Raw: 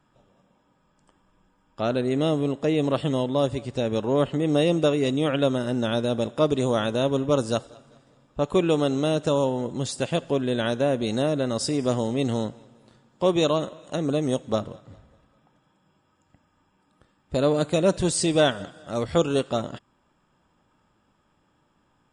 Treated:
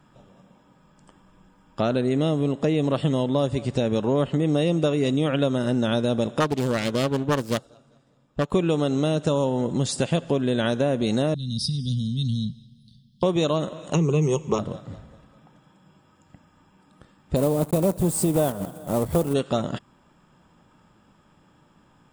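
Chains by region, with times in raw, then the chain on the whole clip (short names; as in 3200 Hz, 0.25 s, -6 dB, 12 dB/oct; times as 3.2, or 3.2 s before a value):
6.4–8.52 self-modulated delay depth 0.44 ms + upward expander, over -43 dBFS
11.34–13.23 elliptic band-stop 230–3700 Hz, stop band 80 dB + fixed phaser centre 1600 Hz, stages 8
13.94–14.59 ripple EQ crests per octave 0.75, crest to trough 16 dB + mismatched tape noise reduction decoder only
17.36–19.35 block floating point 3-bit + band shelf 3000 Hz -13 dB 2.5 oct
whole clip: bell 170 Hz +5 dB 0.89 oct; compressor 3:1, threshold -28 dBFS; gain +7 dB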